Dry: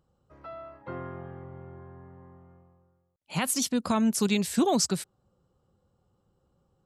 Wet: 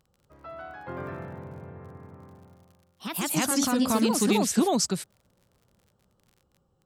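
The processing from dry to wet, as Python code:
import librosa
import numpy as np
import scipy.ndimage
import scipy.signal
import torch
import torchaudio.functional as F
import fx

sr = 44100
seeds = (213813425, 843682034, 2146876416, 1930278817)

y = fx.dmg_crackle(x, sr, seeds[0], per_s=25.0, level_db=-46.0)
y = fx.echo_pitch(y, sr, ms=193, semitones=2, count=2, db_per_echo=-3.0)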